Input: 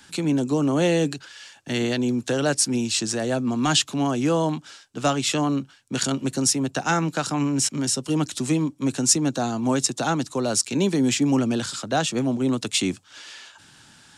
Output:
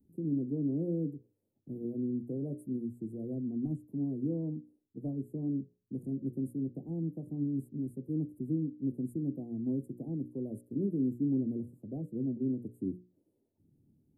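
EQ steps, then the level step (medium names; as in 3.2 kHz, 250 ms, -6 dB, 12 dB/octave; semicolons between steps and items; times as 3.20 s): inverse Chebyshev band-stop 1.4–6.1 kHz, stop band 70 dB; hum notches 60/120/180/240/300/360/420/480/540/600 Hz; -9.0 dB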